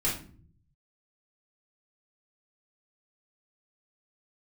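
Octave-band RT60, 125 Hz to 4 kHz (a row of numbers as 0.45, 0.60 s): 1.3, 0.85, 0.60, 0.40, 0.35, 0.30 s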